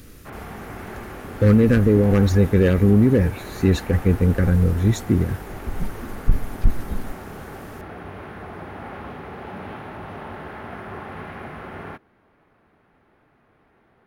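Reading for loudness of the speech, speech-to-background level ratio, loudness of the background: -19.0 LUFS, 17.5 dB, -36.5 LUFS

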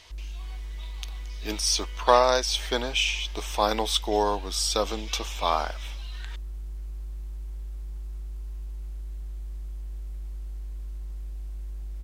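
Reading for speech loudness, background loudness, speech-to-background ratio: -25.5 LUFS, -39.5 LUFS, 14.0 dB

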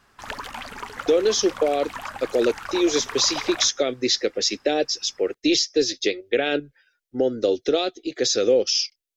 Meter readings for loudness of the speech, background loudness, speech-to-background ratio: -22.5 LUFS, -34.5 LUFS, 12.0 dB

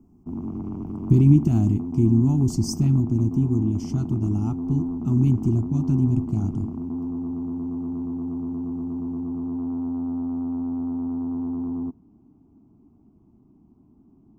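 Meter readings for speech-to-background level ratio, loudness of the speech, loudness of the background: 8.0 dB, -22.0 LUFS, -30.0 LUFS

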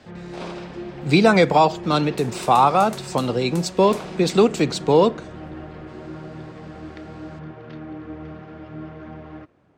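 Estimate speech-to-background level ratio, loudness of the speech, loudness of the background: 17.5 dB, -18.5 LUFS, -36.0 LUFS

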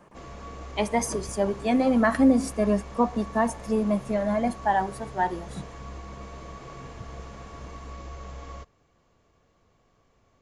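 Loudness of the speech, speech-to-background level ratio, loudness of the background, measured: -25.0 LUFS, 17.0 dB, -42.0 LUFS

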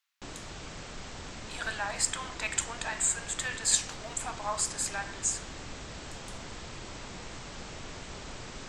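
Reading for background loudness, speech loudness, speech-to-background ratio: -43.0 LUFS, -31.0 LUFS, 12.0 dB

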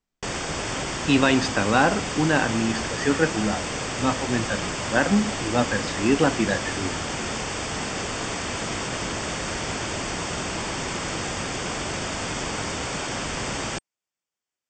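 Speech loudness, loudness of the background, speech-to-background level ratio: -24.0 LUFS, -28.5 LUFS, 4.5 dB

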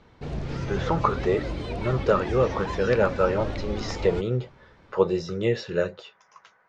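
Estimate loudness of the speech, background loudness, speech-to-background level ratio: -26.0 LUFS, -32.5 LUFS, 6.5 dB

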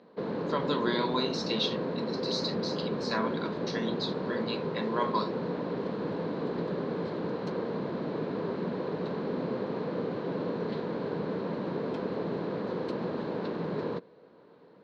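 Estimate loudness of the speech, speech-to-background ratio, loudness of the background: -34.0 LUFS, -0.5 dB, -33.5 LUFS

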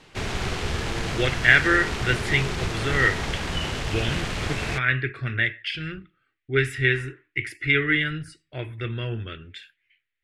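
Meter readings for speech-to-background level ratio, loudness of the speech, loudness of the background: 5.0 dB, -24.0 LUFS, -29.0 LUFS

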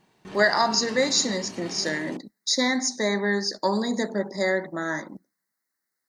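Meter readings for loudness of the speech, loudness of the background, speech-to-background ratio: -24.5 LUFS, -40.0 LUFS, 15.5 dB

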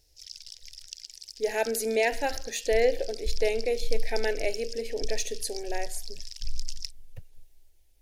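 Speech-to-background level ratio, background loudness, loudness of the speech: 12.5 dB, -42.0 LUFS, -29.5 LUFS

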